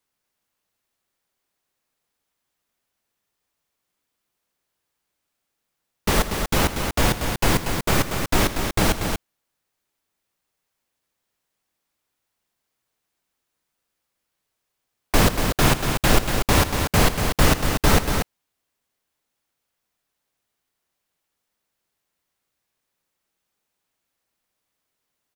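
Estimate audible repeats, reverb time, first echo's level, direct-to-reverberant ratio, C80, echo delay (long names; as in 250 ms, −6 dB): 2, no reverb audible, −13.0 dB, no reverb audible, no reverb audible, 87 ms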